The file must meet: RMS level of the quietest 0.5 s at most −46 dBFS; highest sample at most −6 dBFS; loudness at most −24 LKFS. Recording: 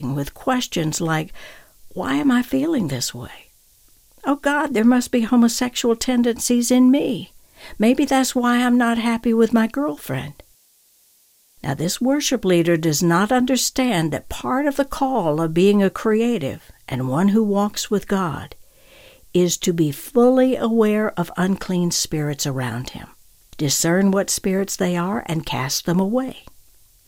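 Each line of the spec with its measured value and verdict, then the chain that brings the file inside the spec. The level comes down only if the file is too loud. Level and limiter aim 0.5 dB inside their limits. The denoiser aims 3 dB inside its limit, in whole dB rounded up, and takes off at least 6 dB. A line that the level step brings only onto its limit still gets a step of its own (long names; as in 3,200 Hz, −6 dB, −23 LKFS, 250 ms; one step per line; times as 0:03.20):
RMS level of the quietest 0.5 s −57 dBFS: in spec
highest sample −5.5 dBFS: out of spec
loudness −19.5 LKFS: out of spec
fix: level −5 dB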